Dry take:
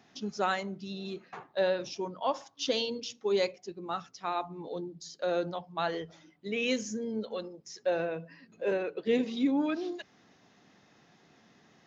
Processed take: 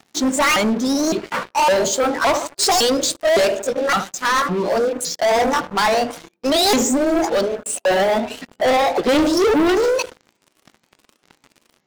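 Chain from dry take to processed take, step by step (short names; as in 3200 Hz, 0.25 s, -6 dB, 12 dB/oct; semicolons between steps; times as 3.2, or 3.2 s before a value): repeated pitch sweeps +9 st, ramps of 0.561 s; narrowing echo 77 ms, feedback 45%, band-pass 390 Hz, level -13.5 dB; sample leveller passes 5; gain +5 dB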